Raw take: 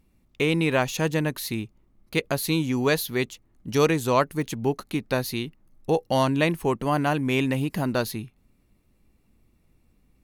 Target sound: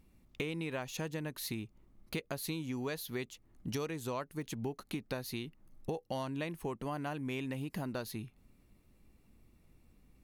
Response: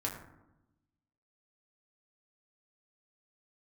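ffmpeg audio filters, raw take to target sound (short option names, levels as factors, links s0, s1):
-af "acompressor=threshold=0.0178:ratio=6,volume=0.891"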